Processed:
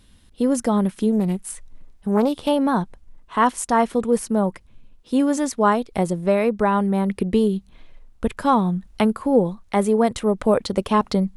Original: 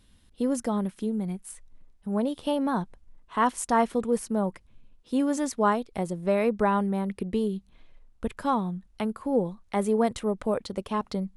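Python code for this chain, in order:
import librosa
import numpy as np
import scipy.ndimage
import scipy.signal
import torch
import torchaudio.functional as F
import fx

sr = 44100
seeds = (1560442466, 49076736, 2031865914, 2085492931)

y = fx.rider(x, sr, range_db=10, speed_s=0.5)
y = fx.doppler_dist(y, sr, depth_ms=0.27, at=(1.12, 2.49))
y = y * librosa.db_to_amplitude(7.5)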